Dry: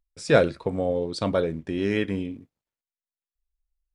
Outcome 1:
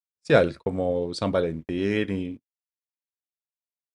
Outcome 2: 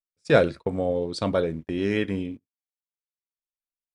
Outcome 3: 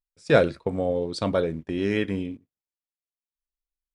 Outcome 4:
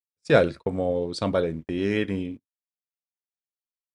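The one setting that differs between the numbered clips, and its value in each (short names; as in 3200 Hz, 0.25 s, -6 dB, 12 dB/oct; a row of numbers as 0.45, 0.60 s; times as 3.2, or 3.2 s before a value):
gate, range: -59, -33, -14, -47 dB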